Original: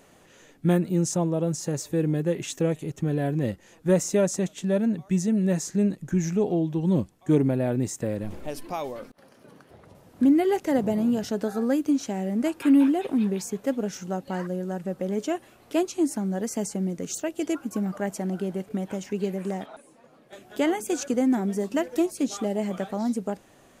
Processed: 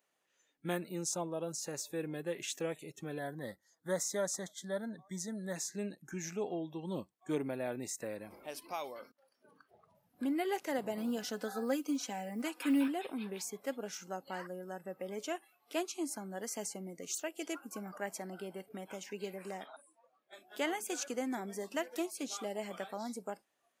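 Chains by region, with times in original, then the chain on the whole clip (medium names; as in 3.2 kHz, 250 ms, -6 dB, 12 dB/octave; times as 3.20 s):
3.19–5.56 s: Butterworth band-stop 2.6 kHz, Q 2.2 + peaking EQ 370 Hz -4.5 dB 0.8 oct
10.97–12.88 s: comb 4 ms + short-mantissa float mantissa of 6-bit
whole clip: high-pass 1.1 kHz 6 dB/octave; spectral noise reduction 17 dB; peaking EQ 7.4 kHz -2.5 dB; trim -3.5 dB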